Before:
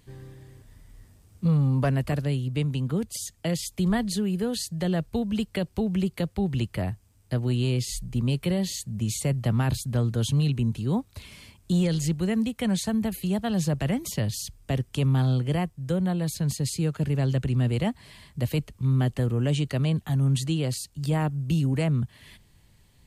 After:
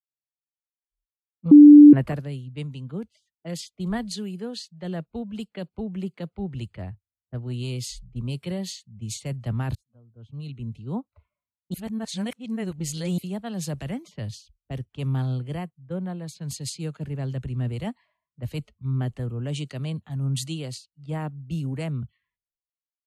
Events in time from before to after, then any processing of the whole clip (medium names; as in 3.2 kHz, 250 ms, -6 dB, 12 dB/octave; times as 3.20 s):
1.51–1.93 s: bleep 294 Hz -8 dBFS
9.75–10.84 s: fade in
11.74–13.18 s: reverse
whole clip: spectral noise reduction 27 dB; level-controlled noise filter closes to 380 Hz, open at -22 dBFS; three bands expanded up and down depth 100%; trim -5 dB